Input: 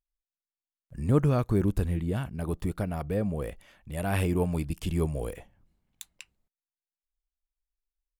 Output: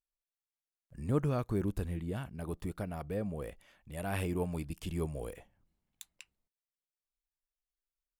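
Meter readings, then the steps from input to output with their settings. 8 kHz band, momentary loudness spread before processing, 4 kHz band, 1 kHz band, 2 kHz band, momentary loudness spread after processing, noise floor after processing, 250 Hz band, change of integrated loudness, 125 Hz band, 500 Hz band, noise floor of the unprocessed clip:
-6.0 dB, 22 LU, -6.0 dB, -6.0 dB, -6.0 dB, 20 LU, under -85 dBFS, -7.5 dB, -7.5 dB, -8.5 dB, -6.5 dB, under -85 dBFS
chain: low shelf 190 Hz -3.5 dB; gain -6 dB

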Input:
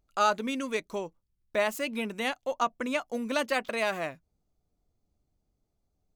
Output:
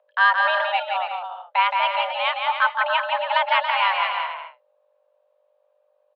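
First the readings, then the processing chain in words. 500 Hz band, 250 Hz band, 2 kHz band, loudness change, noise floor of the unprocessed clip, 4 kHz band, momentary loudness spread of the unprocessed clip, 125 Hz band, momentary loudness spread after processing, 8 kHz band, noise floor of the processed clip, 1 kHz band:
+2.0 dB, under -40 dB, +12.5 dB, +9.5 dB, -79 dBFS, +12.0 dB, 9 LU, under -40 dB, 8 LU, under -25 dB, -66 dBFS, +12.5 dB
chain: bouncing-ball echo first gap 0.17 s, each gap 0.65×, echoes 5; hum 50 Hz, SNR 26 dB; mistuned SSB +350 Hz 250–3200 Hz; gain +7.5 dB

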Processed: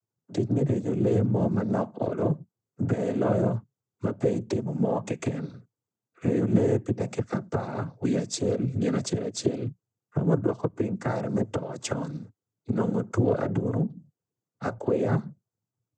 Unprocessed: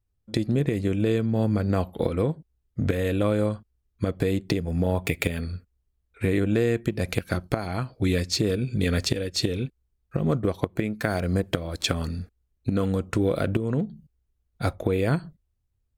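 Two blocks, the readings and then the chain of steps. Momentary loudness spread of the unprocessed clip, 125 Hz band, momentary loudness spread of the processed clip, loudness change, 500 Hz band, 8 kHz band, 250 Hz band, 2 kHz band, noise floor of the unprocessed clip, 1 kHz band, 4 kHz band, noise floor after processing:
8 LU, -2.0 dB, 9 LU, -1.5 dB, -0.5 dB, -2.0 dB, -0.5 dB, -8.5 dB, -75 dBFS, 0.0 dB, -10.5 dB, under -85 dBFS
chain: band shelf 2800 Hz -12 dB; noise vocoder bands 16

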